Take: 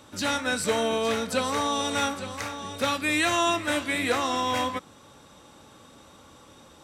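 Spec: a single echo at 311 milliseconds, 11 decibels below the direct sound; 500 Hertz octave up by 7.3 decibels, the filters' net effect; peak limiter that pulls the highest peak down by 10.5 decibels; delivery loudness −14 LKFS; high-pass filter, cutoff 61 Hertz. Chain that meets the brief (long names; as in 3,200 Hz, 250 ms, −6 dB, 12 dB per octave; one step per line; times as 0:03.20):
high-pass filter 61 Hz
parametric band 500 Hz +8.5 dB
brickwall limiter −16.5 dBFS
single-tap delay 311 ms −11 dB
level +11.5 dB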